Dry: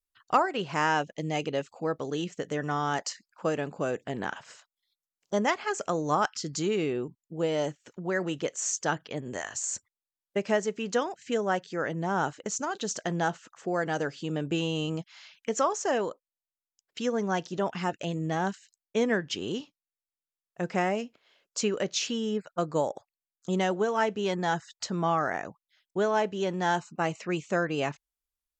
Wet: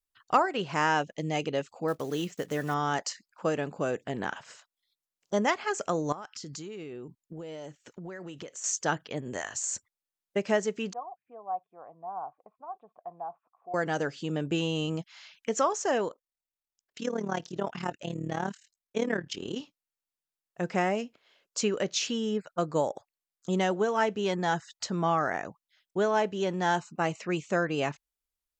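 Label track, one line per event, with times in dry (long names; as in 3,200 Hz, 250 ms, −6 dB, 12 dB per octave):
1.880000	2.750000	one scale factor per block 5 bits
6.120000	8.640000	downward compressor 12 to 1, threshold −37 dBFS
10.930000	13.740000	formant resonators in series a
16.080000	19.570000	amplitude modulation modulator 37 Hz, depth 70%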